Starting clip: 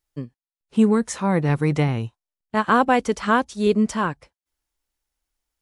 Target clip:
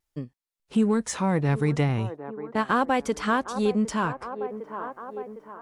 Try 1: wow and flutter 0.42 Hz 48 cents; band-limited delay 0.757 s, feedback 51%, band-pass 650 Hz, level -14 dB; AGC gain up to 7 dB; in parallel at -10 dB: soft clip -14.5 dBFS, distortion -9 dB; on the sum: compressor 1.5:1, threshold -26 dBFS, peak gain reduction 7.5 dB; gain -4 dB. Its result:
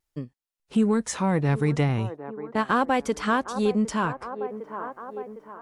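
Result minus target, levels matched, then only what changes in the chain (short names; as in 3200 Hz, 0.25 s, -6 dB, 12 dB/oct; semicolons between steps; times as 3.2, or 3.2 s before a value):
soft clip: distortion -6 dB
change: soft clip -23.5 dBFS, distortion -4 dB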